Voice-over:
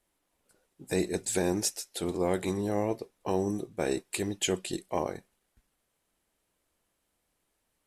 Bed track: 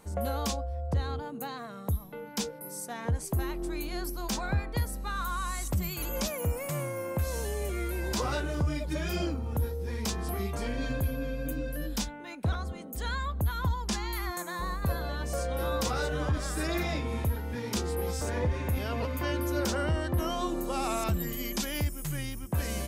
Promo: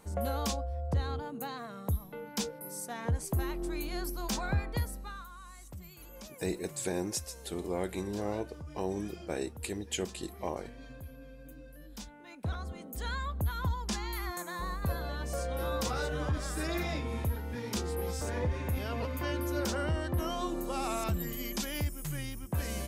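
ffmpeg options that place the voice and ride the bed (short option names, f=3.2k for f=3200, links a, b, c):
-filter_complex "[0:a]adelay=5500,volume=-5.5dB[a];[1:a]volume=12dB,afade=t=out:st=4.71:d=0.57:silence=0.177828,afade=t=in:st=11.87:d=0.96:silence=0.211349[b];[a][b]amix=inputs=2:normalize=0"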